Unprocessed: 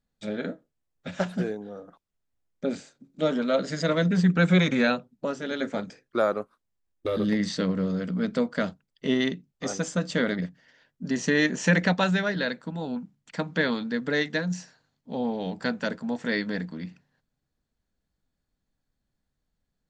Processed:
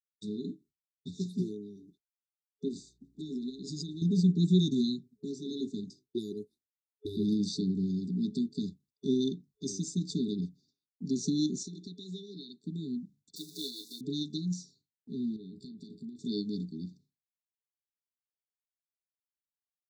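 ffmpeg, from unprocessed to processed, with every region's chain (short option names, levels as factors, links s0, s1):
-filter_complex "[0:a]asettb=1/sr,asplit=3[s0][s1][s2];[s0]atrim=end=2.684[s3];[s1]atrim=start=2.68:end=4.02,asetpts=PTS-STARTPTS,afade=t=in:d=0.004:c=qsin,afade=t=out:st=1.336:d=0.004:c=qsin,equalizer=f=510:t=o:w=0.36:g=7.5,acompressor=threshold=0.0355:ratio=2.5:attack=3.2:release=140:knee=1:detection=peak,aeval=exprs='val(0)+0.000631*(sin(2*PI*60*n/s)+sin(2*PI*2*60*n/s)/2+sin(2*PI*3*60*n/s)/3+sin(2*PI*4*60*n/s)/4+sin(2*PI*5*60*n/s)/5)':c=same[s4];[s2]atrim=start=4.016[s5];[s3][s4]acrossfade=d=0.004:c1=hsin:c2=qsin[s6];[s6][s5]acrossfade=d=0.004:c1=qsin:c2=hsin,asettb=1/sr,asplit=3[s7][s8][s9];[s7]atrim=end=11.634[s10];[s8]atrim=start=11.63:end=12.64,asetpts=PTS-STARTPTS,afade=t=in:d=0.004:c=qsin,afade=t=out:st=1.006:d=0.004:c=qsin,highpass=f=730:p=1,highshelf=f=4400:g=-11,acompressor=threshold=0.0316:ratio=2.5:attack=3.2:release=140:knee=1:detection=peak[s11];[s9]atrim=start=12.636[s12];[s10][s11]acrossfade=d=0.004:c1=hsin:c2=qsin[s13];[s13][s12]acrossfade=d=0.004:c1=qsin:c2=hsin,asettb=1/sr,asplit=3[s14][s15][s16];[s14]atrim=end=13.364[s17];[s15]atrim=start=13.36:end=14.01,asetpts=PTS-STARTPTS,afade=t=in:d=0.004:c=qsin,afade=t=out:st=0.646:d=0.004:c=qsin,aeval=exprs='val(0)+0.5*0.0237*sgn(val(0))':c=same,highpass=690,aecho=1:1:6.8:0.93,atrim=end_sample=28665[s18];[s16]atrim=start=14.006[s19];[s17][s18]acrossfade=d=0.004:c1=hsin:c2=qsin[s20];[s20][s19]acrossfade=d=0.004:c1=qsin:c2=hsin,asettb=1/sr,asplit=3[s21][s22][s23];[s21]atrim=end=15.364[s24];[s22]atrim=start=15.36:end=16.19,asetpts=PTS-STARTPTS,afade=t=in:d=0.004:c=qsin,afade=t=out:st=0.826:d=0.004:c=qsin,equalizer=f=6300:t=o:w=0.38:g=-14,acompressor=threshold=0.0178:ratio=12:attack=3.2:release=140:knee=1:detection=peak,asplit=2[s25][s26];[s26]adelay=36,volume=0.211[s27];[s25][s27]amix=inputs=2:normalize=0,atrim=end_sample=36603[s28];[s23]atrim=start=16.186[s29];[s24][s28]acrossfade=d=0.004:c1=hsin:c2=qsin[s30];[s30][s29]acrossfade=d=0.004:c1=qsin:c2=hsin,afftfilt=real='re*(1-between(b*sr/4096,430,3500))':imag='im*(1-between(b*sr/4096,430,3500))':win_size=4096:overlap=0.75,agate=range=0.0224:threshold=0.002:ratio=3:detection=peak,highpass=56,volume=0.668"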